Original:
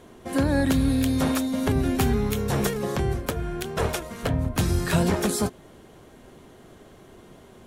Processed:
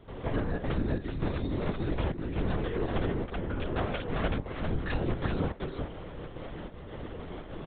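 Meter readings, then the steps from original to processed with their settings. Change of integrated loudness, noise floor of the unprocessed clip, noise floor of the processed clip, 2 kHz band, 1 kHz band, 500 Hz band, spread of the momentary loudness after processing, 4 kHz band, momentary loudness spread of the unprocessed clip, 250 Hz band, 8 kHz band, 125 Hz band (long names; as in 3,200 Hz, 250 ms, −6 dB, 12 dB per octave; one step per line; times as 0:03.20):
−9.0 dB, −50 dBFS, −44 dBFS, −6.5 dB, −6.5 dB, −6.0 dB, 11 LU, −10.0 dB, 7 LU, −9.5 dB, below −40 dB, −6.5 dB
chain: downward compressor 8 to 1, threshold −36 dBFS, peak gain reduction 18.5 dB
gate pattern ".xxxxxx.xxxx.." 184 BPM −12 dB
high-frequency loss of the air 67 metres
single-tap delay 384 ms −3.5 dB
linear-prediction vocoder at 8 kHz whisper
level +8 dB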